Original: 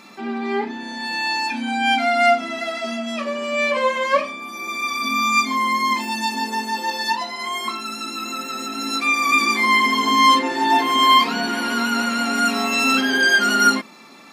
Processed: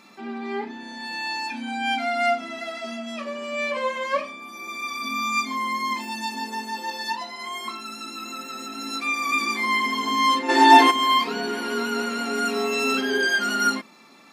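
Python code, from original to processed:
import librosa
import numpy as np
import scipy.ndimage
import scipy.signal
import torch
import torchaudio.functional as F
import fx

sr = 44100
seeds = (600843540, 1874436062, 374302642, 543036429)

y = fx.spec_box(x, sr, start_s=10.49, length_s=0.42, low_hz=240.0, high_hz=12000.0, gain_db=12)
y = fx.peak_eq(y, sr, hz=420.0, db=15.0, octaves=0.21, at=(11.27, 13.27))
y = y * librosa.db_to_amplitude(-6.5)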